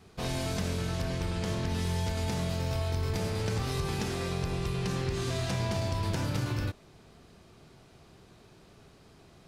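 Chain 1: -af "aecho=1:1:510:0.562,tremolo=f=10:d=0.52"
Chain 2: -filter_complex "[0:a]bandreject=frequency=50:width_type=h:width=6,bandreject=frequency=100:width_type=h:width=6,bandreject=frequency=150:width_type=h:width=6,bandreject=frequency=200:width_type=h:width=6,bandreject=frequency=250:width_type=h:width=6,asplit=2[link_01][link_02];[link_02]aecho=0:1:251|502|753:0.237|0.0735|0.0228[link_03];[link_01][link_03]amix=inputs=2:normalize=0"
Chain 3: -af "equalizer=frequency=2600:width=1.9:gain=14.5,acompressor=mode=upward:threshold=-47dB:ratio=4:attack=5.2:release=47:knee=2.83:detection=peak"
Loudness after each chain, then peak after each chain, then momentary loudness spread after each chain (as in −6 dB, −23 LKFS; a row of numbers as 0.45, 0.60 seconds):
−33.5, −32.0, −29.5 LKFS; −18.5, −18.5, −15.0 dBFS; 4, 3, 2 LU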